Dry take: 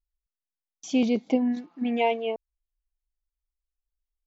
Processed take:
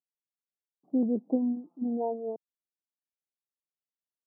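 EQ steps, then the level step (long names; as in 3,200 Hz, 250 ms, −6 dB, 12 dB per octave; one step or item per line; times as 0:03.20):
Gaussian smoothing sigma 12 samples
high-pass filter 160 Hz 24 dB per octave
−2.5 dB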